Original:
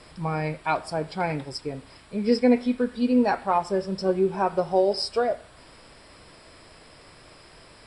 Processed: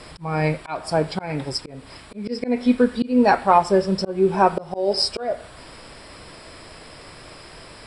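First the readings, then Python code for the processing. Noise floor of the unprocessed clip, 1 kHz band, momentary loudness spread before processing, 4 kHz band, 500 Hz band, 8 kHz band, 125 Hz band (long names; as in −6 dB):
−51 dBFS, +6.0 dB, 12 LU, +7.0 dB, +2.5 dB, can't be measured, +5.0 dB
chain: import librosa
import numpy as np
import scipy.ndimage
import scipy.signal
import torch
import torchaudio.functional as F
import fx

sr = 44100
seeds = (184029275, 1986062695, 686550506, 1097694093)

y = fx.auto_swell(x, sr, attack_ms=274.0)
y = F.gain(torch.from_numpy(y), 8.0).numpy()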